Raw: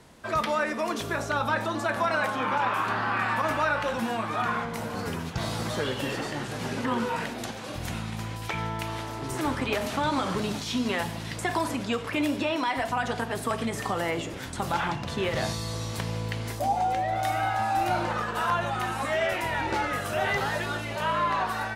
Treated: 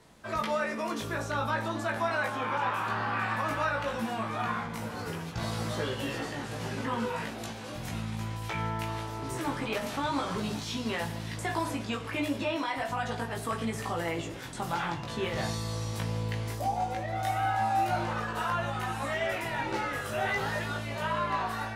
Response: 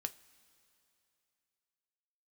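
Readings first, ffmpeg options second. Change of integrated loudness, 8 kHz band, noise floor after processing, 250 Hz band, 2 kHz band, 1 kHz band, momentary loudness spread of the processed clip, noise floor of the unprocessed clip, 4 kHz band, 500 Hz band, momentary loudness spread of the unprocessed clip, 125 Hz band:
-3.5 dB, -4.0 dB, -39 dBFS, -3.5 dB, -4.0 dB, -4.0 dB, 6 LU, -36 dBFS, -4.0 dB, -4.0 dB, 7 LU, -1.0 dB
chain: -filter_complex "[0:a]asplit=2[s0][s1];[1:a]atrim=start_sample=2205,adelay=18[s2];[s1][s2]afir=irnorm=-1:irlink=0,volume=0.944[s3];[s0][s3]amix=inputs=2:normalize=0,volume=0.501"

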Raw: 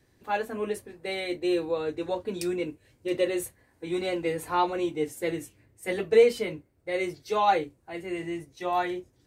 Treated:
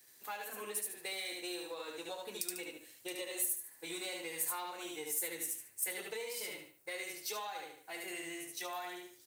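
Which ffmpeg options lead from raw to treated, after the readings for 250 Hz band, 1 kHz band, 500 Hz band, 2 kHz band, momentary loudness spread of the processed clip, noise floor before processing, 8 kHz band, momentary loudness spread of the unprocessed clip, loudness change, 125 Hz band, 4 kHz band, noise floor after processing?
-18.0 dB, -16.5 dB, -19.0 dB, -7.5 dB, 9 LU, -66 dBFS, +6.0 dB, 13 LU, -11.0 dB, -23.0 dB, -4.0 dB, -62 dBFS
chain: -filter_complex "[0:a]aeval=exprs='if(lt(val(0),0),0.708*val(0),val(0))':c=same,highpass=f=1300:p=1,highshelf=f=7600:g=6.5,asplit=2[s0][s1];[s1]aecho=0:1:73|146|219|292:0.708|0.184|0.0479|0.0124[s2];[s0][s2]amix=inputs=2:normalize=0,alimiter=limit=0.075:level=0:latency=1:release=469,acompressor=threshold=0.00631:ratio=4,aemphasis=mode=production:type=50kf,volume=1.19"

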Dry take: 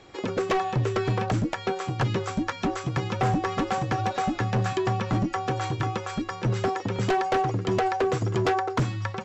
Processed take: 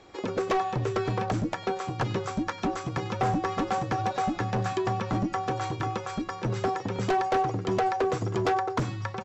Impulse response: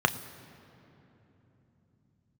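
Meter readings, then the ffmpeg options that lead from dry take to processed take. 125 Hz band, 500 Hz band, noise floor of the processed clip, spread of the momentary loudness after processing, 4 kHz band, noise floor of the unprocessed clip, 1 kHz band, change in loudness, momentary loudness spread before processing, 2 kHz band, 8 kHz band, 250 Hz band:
-4.5 dB, -2.0 dB, -41 dBFS, 5 LU, -3.5 dB, -39 dBFS, -0.5 dB, -2.0 dB, 4 LU, -3.0 dB, no reading, -2.0 dB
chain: -filter_complex "[0:a]aecho=1:1:97:0.0794,asplit=2[s0][s1];[1:a]atrim=start_sample=2205,afade=t=out:st=0.42:d=0.01,atrim=end_sample=18963[s2];[s1][s2]afir=irnorm=-1:irlink=0,volume=0.0473[s3];[s0][s3]amix=inputs=2:normalize=0,volume=0.75"

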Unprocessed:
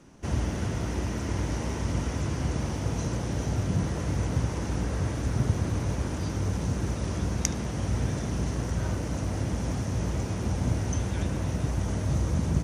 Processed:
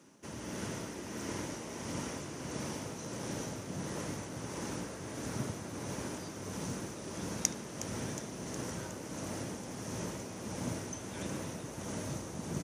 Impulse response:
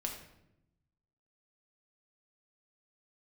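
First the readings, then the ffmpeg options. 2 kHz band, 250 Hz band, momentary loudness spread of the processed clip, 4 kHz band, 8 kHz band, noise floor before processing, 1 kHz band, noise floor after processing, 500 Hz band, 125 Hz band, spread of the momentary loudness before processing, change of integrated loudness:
-5.5 dB, -8.5 dB, 3 LU, -4.0 dB, -2.0 dB, -33 dBFS, -6.5 dB, -45 dBFS, -6.0 dB, -16.0 dB, 3 LU, -10.5 dB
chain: -filter_complex "[0:a]highpass=190,highshelf=f=7400:g=10,bandreject=f=730:w=12,tremolo=f=1.5:d=0.49,asplit=2[s0][s1];[s1]asplit=7[s2][s3][s4][s5][s6][s7][s8];[s2]adelay=364,afreqshift=140,volume=0.224[s9];[s3]adelay=728,afreqshift=280,volume=0.143[s10];[s4]adelay=1092,afreqshift=420,volume=0.0912[s11];[s5]adelay=1456,afreqshift=560,volume=0.0589[s12];[s6]adelay=1820,afreqshift=700,volume=0.0376[s13];[s7]adelay=2184,afreqshift=840,volume=0.024[s14];[s8]adelay=2548,afreqshift=980,volume=0.0153[s15];[s9][s10][s11][s12][s13][s14][s15]amix=inputs=7:normalize=0[s16];[s0][s16]amix=inputs=2:normalize=0,volume=0.596"

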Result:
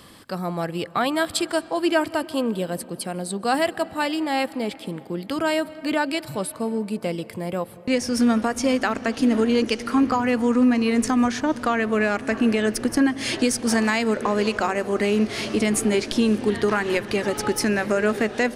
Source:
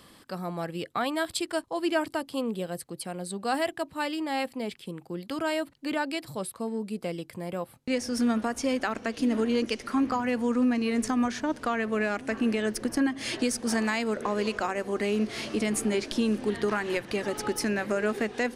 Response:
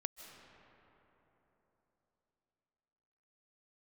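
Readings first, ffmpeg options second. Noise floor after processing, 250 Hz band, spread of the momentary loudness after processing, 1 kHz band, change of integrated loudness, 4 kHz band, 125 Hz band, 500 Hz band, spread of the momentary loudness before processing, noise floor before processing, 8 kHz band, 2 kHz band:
-42 dBFS, +6.5 dB, 9 LU, +6.5 dB, +6.5 dB, +6.5 dB, +7.0 dB, +6.5 dB, 9 LU, -55 dBFS, +6.5 dB, +6.5 dB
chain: -filter_complex "[0:a]asplit=2[s0][s1];[s1]equalizer=f=99:w=1.7:g=11[s2];[1:a]atrim=start_sample=2205[s3];[s2][s3]afir=irnorm=-1:irlink=0,volume=0.422[s4];[s0][s4]amix=inputs=2:normalize=0,volume=1.58"

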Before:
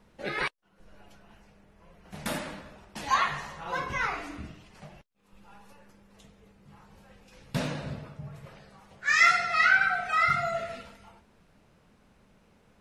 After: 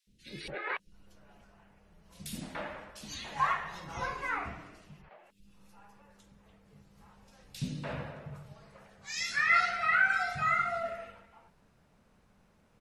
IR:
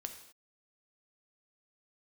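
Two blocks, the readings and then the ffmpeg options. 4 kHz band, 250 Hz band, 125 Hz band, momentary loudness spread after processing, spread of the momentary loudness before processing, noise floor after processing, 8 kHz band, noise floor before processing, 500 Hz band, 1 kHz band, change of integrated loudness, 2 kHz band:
-5.5 dB, -5.0 dB, -4.0 dB, 22 LU, 23 LU, -67 dBFS, -4.0 dB, -63 dBFS, -4.5 dB, -4.0 dB, -5.0 dB, -4.5 dB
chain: -filter_complex "[0:a]acrossover=split=340|2900[s0][s1][s2];[s0]adelay=70[s3];[s1]adelay=290[s4];[s3][s4][s2]amix=inputs=3:normalize=0,volume=0.668"

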